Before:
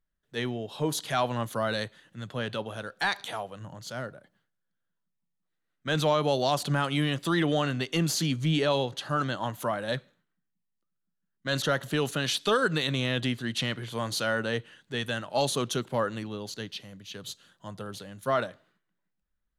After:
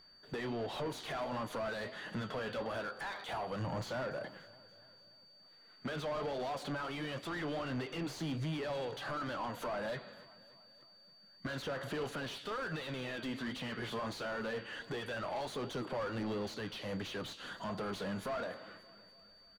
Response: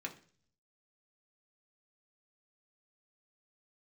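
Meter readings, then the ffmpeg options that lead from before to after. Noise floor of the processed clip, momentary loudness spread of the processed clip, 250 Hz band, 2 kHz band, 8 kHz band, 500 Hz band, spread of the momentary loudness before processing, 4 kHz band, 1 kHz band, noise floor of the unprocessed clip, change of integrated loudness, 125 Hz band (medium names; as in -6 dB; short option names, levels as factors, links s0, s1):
-62 dBFS, 20 LU, -9.5 dB, -9.5 dB, -16.5 dB, -9.0 dB, 14 LU, -12.5 dB, -9.0 dB, -81 dBFS, -10.5 dB, -12.0 dB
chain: -filter_complex "[0:a]acompressor=threshold=0.00631:ratio=4,flanger=delay=5.2:depth=7.4:regen=-70:speed=1.4:shape=triangular,alimiter=level_in=10:limit=0.0631:level=0:latency=1:release=215,volume=0.1,aphaser=in_gain=1:out_gain=1:delay=4.8:decay=0.28:speed=0.25:type=sinusoidal,asplit=2[s0][s1];[s1]highpass=f=720:p=1,volume=17.8,asoftclip=type=tanh:threshold=0.00891[s2];[s0][s2]amix=inputs=2:normalize=0,lowpass=f=1100:p=1,volume=0.501,acontrast=39,aeval=exprs='val(0)+0.000562*sin(2*PI*4600*n/s)':c=same,aecho=1:1:288|576|864|1152|1440:0.0944|0.0548|0.0318|0.0184|0.0107,volume=2"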